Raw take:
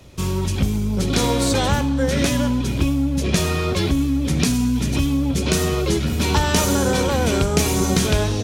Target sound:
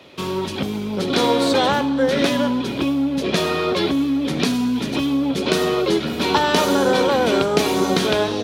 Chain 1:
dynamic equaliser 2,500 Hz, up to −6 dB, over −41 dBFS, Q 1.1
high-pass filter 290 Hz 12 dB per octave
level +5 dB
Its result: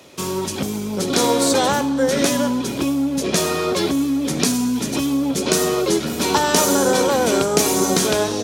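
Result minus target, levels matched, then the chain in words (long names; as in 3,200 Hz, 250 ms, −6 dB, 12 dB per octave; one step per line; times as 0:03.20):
8,000 Hz band +11.0 dB
dynamic equaliser 2,500 Hz, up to −6 dB, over −41 dBFS, Q 1.1
high-pass filter 290 Hz 12 dB per octave
high shelf with overshoot 5,000 Hz −10.5 dB, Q 1.5
level +5 dB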